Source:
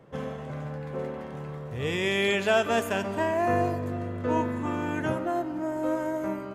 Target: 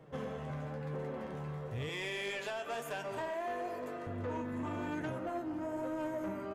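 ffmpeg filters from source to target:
ffmpeg -i in.wav -filter_complex "[0:a]asettb=1/sr,asplit=3[link_01][link_02][link_03];[link_01]atrim=end=1.894[link_04];[link_02]atrim=start=1.89:end=4.07,asetpts=PTS-STARTPTS,afade=type=in:duration=0.004:curve=qsin,afade=type=out:start_time=2.176:duration=0.004:curve=qsin,highpass=400[link_05];[link_03]atrim=start=4.066[link_06];[link_04][link_05]acrossfade=duration=0.004:curve1=hsin:curve2=qsin[link_07];[link_07][link_06]acrossfade=duration=0.004:curve1=qsin:curve2=hsin,acompressor=threshold=-30dB:ratio=6,asplit=2[link_08][link_09];[link_09]adelay=1399,volume=-15dB,highshelf=frequency=4000:gain=-31.5[link_10];[link_08][link_10]amix=inputs=2:normalize=0,flanger=delay=6.4:depth=6.3:regen=48:speed=1:shape=sinusoidal,asoftclip=type=tanh:threshold=-32.5dB,volume=1dB" out.wav

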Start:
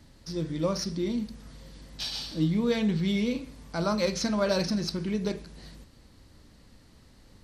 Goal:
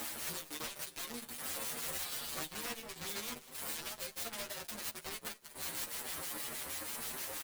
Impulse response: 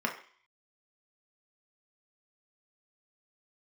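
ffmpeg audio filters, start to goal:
-filter_complex "[0:a]highpass=490,equalizer=frequency=5700:width_type=o:width=0.42:gain=-10,acompressor=mode=upward:threshold=-32dB:ratio=2.5,alimiter=limit=-22dB:level=0:latency=1:release=477,acompressor=threshold=-39dB:ratio=4,aexciter=amount=12.3:drive=2.1:freq=8300,acrusher=bits=5:mix=0:aa=0.5,acrossover=split=2000[link_01][link_02];[link_01]aeval=exprs='val(0)*(1-0.7/2+0.7/2*cos(2*PI*6.3*n/s))':channel_layout=same[link_03];[link_02]aeval=exprs='val(0)*(1-0.7/2-0.7/2*cos(2*PI*6.3*n/s))':channel_layout=same[link_04];[link_03][link_04]amix=inputs=2:normalize=0,aeval=exprs='(mod(75*val(0)+1,2)-1)/75':channel_layout=same,asplit=2[link_05][link_06];[link_06]adelay=13,volume=-4.5dB[link_07];[link_05][link_07]amix=inputs=2:normalize=0,asplit=2[link_08][link_09];[link_09]aecho=0:1:192|384|576|768|960:0.126|0.0718|0.0409|0.0233|0.0133[link_10];[link_08][link_10]amix=inputs=2:normalize=0,asplit=2[link_11][link_12];[link_12]adelay=6.9,afreqshift=1.9[link_13];[link_11][link_13]amix=inputs=2:normalize=1,volume=7dB"

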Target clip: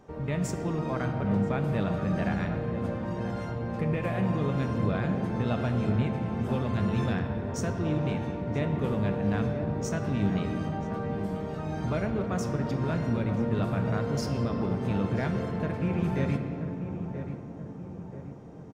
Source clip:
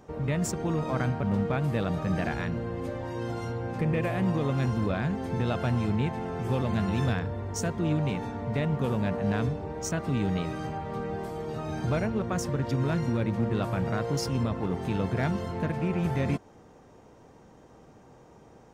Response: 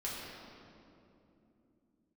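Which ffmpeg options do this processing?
-filter_complex "[0:a]highshelf=frequency=5800:gain=-5.5,asplit=2[link_01][link_02];[link_02]adelay=981,lowpass=frequency=1300:poles=1,volume=-9dB,asplit=2[link_03][link_04];[link_04]adelay=981,lowpass=frequency=1300:poles=1,volume=0.54,asplit=2[link_05][link_06];[link_06]adelay=981,lowpass=frequency=1300:poles=1,volume=0.54,asplit=2[link_07][link_08];[link_08]adelay=981,lowpass=frequency=1300:poles=1,volume=0.54,asplit=2[link_09][link_10];[link_10]adelay=981,lowpass=frequency=1300:poles=1,volume=0.54,asplit=2[link_11][link_12];[link_12]adelay=981,lowpass=frequency=1300:poles=1,volume=0.54[link_13];[link_01][link_03][link_05][link_07][link_09][link_11][link_13]amix=inputs=7:normalize=0,asplit=2[link_14][link_15];[1:a]atrim=start_sample=2205[link_16];[link_15][link_16]afir=irnorm=-1:irlink=0,volume=-5dB[link_17];[link_14][link_17]amix=inputs=2:normalize=0,volume=-4.5dB"

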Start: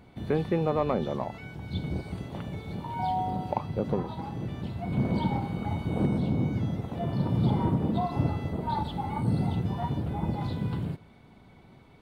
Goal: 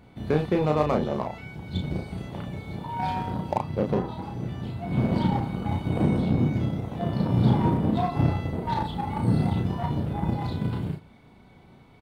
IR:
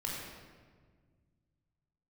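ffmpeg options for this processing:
-filter_complex "[0:a]asplit=2[link_01][link_02];[link_02]acrusher=bits=3:mix=0:aa=0.5,volume=-9.5dB[link_03];[link_01][link_03]amix=inputs=2:normalize=0,asplit=2[link_04][link_05];[link_05]adelay=33,volume=-4dB[link_06];[link_04][link_06]amix=inputs=2:normalize=0"

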